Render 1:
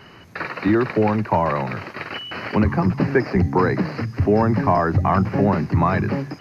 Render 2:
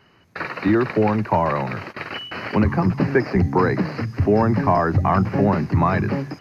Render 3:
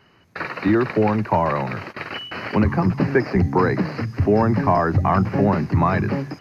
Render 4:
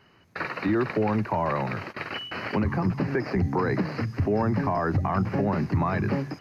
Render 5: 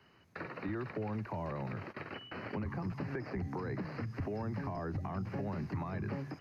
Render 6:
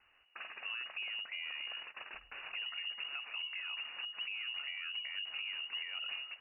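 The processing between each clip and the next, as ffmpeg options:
ffmpeg -i in.wav -af "agate=range=-11dB:threshold=-34dB:ratio=16:detection=peak" out.wav
ffmpeg -i in.wav -af anull out.wav
ffmpeg -i in.wav -af "alimiter=limit=-12.5dB:level=0:latency=1:release=114,volume=-3dB" out.wav
ffmpeg -i in.wav -filter_complex "[0:a]acrossover=split=120|560|2500[link_01][link_02][link_03][link_04];[link_01]acompressor=threshold=-35dB:ratio=4[link_05];[link_02]acompressor=threshold=-34dB:ratio=4[link_06];[link_03]acompressor=threshold=-40dB:ratio=4[link_07];[link_04]acompressor=threshold=-56dB:ratio=4[link_08];[link_05][link_06][link_07][link_08]amix=inputs=4:normalize=0,volume=-6dB" out.wav
ffmpeg -i in.wav -af "lowpass=frequency=2600:width_type=q:width=0.5098,lowpass=frequency=2600:width_type=q:width=0.6013,lowpass=frequency=2600:width_type=q:width=0.9,lowpass=frequency=2600:width_type=q:width=2.563,afreqshift=-3000,volume=-4dB" out.wav

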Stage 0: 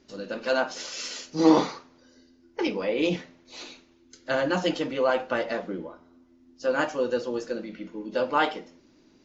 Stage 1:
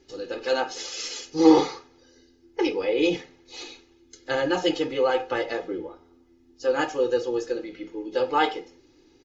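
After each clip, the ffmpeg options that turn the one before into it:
ffmpeg -i in.wav -af "equalizer=frequency=1200:width=1.5:gain=-3.5,aecho=1:1:2.4:0.88" out.wav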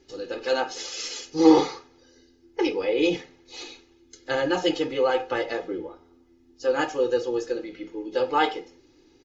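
ffmpeg -i in.wav -af anull out.wav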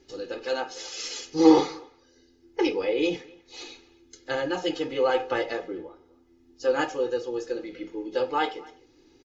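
ffmpeg -i in.wav -filter_complex "[0:a]asplit=2[link_01][link_02];[link_02]adelay=250,highpass=300,lowpass=3400,asoftclip=type=hard:threshold=-12dB,volume=-22dB[link_03];[link_01][link_03]amix=inputs=2:normalize=0,tremolo=f=0.76:d=0.42" out.wav

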